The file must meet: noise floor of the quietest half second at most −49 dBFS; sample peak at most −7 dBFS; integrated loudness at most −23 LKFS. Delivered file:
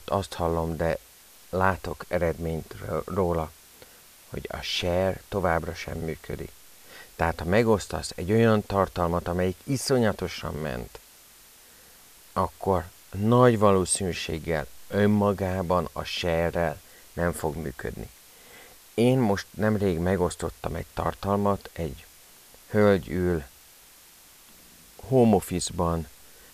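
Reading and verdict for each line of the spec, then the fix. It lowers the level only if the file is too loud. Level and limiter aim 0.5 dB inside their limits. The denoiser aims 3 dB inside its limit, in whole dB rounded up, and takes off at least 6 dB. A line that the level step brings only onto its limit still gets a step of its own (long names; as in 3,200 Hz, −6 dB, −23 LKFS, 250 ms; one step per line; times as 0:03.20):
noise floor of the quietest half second −53 dBFS: in spec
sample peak −6.5 dBFS: out of spec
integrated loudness −26.5 LKFS: in spec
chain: brickwall limiter −7.5 dBFS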